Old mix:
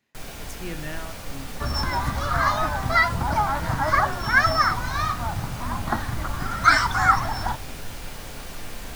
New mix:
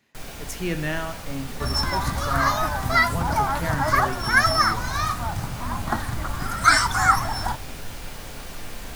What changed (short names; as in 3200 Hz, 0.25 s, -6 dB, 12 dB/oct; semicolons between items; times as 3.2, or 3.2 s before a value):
speech +8.0 dB; second sound: remove LPF 4700 Hz